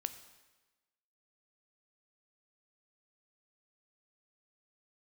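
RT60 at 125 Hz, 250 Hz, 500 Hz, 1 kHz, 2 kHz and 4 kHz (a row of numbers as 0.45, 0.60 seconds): 1.1, 1.2, 1.2, 1.2, 1.2, 1.1 seconds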